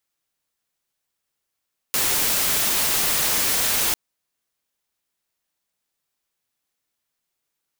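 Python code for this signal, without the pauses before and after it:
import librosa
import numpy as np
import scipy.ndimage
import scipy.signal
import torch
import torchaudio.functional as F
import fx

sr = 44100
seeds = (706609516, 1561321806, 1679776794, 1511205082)

y = fx.noise_colour(sr, seeds[0], length_s=2.0, colour='white', level_db=-21.0)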